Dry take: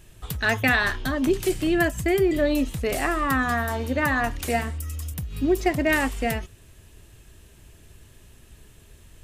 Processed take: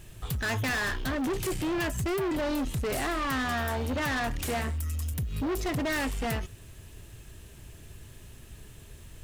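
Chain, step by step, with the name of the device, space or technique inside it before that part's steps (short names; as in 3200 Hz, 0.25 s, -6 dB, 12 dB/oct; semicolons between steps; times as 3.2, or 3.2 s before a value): open-reel tape (soft clip -29 dBFS, distortion -6 dB; bell 120 Hz +3.5 dB 0.85 oct; white noise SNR 38 dB); gain +1.5 dB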